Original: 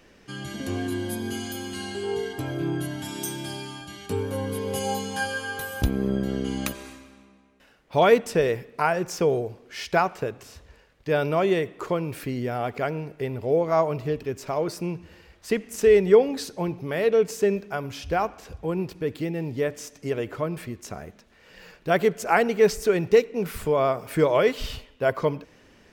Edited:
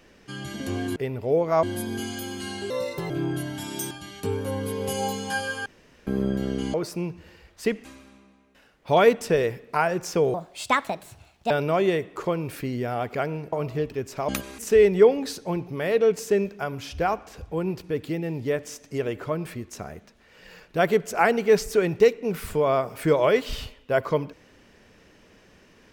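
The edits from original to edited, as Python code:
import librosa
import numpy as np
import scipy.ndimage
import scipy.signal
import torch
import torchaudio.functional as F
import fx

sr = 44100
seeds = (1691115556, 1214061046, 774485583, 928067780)

y = fx.edit(x, sr, fx.speed_span(start_s=2.03, length_s=0.51, speed=1.28),
    fx.cut(start_s=3.35, length_s=0.42),
    fx.room_tone_fill(start_s=5.52, length_s=0.41),
    fx.swap(start_s=6.6, length_s=0.3, other_s=14.59, other_length_s=1.11),
    fx.speed_span(start_s=9.39, length_s=1.75, speed=1.5),
    fx.move(start_s=13.16, length_s=0.67, to_s=0.96), tone=tone)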